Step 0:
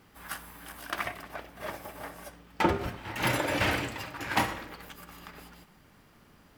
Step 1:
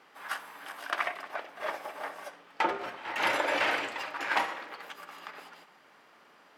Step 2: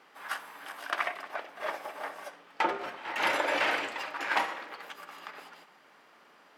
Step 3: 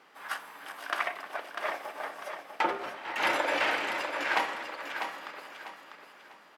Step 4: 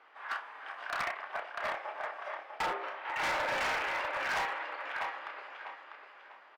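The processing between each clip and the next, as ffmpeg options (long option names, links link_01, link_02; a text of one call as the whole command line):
ffmpeg -i in.wav -af "highpass=540,aemphasis=mode=reproduction:type=50fm,alimiter=limit=-20dB:level=0:latency=1:release=494,volume=5dB" out.wav
ffmpeg -i in.wav -af "equalizer=frequency=110:width_type=o:width=0.78:gain=-4" out.wav
ffmpeg -i in.wav -af "aecho=1:1:647|1294|1941|2588:0.447|0.143|0.0457|0.0146" out.wav
ffmpeg -i in.wav -filter_complex "[0:a]highpass=580,lowpass=2500,asplit=2[link_01][link_02];[link_02]adelay=30,volume=-6dB[link_03];[link_01][link_03]amix=inputs=2:normalize=0,asoftclip=type=hard:threshold=-29dB" out.wav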